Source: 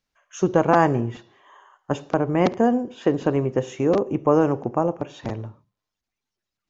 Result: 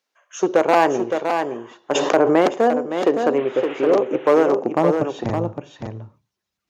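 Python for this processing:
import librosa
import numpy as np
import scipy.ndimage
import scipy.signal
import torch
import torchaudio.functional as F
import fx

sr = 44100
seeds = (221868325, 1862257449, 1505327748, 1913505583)

p1 = fx.delta_mod(x, sr, bps=16000, step_db=-31.5, at=(3.38, 3.92))
p2 = np.clip(p1, -10.0 ** (-12.0 / 20.0), 10.0 ** (-12.0 / 20.0))
p3 = fx.filter_sweep_highpass(p2, sr, from_hz=410.0, to_hz=66.0, start_s=4.5, end_s=5.32, q=1.1)
p4 = p3 + fx.echo_single(p3, sr, ms=565, db=-6.0, dry=0)
p5 = fx.env_flatten(p4, sr, amount_pct=70, at=(1.94, 2.4), fade=0.02)
y = p5 * librosa.db_to_amplitude(3.5)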